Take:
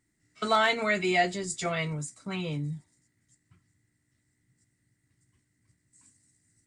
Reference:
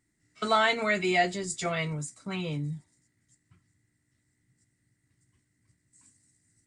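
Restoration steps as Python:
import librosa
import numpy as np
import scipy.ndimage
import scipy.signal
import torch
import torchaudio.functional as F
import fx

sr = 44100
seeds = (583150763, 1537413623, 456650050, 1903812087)

y = fx.fix_declip(x, sr, threshold_db=-14.5)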